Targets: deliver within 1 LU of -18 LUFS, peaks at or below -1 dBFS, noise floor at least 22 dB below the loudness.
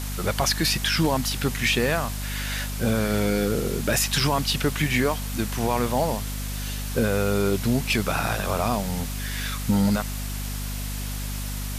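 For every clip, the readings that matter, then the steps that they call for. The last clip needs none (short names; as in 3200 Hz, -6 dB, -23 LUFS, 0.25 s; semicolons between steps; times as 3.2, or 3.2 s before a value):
hum 50 Hz; harmonics up to 250 Hz; hum level -28 dBFS; noise floor -30 dBFS; noise floor target -47 dBFS; loudness -24.5 LUFS; peak -10.5 dBFS; loudness target -18.0 LUFS
-> de-hum 50 Hz, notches 5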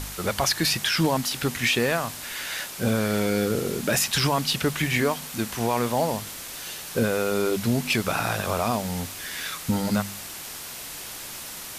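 hum none; noise floor -38 dBFS; noise floor target -48 dBFS
-> denoiser 10 dB, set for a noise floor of -38 dBFS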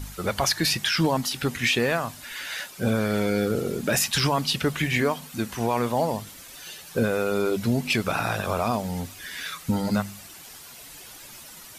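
noise floor -45 dBFS; noise floor target -48 dBFS
-> denoiser 6 dB, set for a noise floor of -45 dBFS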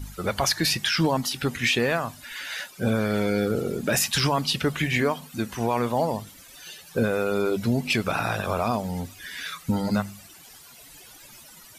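noise floor -48 dBFS; loudness -25.5 LUFS; peak -10.5 dBFS; loudness target -18.0 LUFS
-> gain +7.5 dB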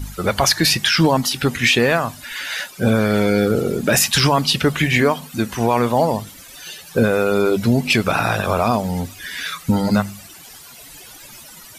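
loudness -18.0 LUFS; peak -3.0 dBFS; noise floor -41 dBFS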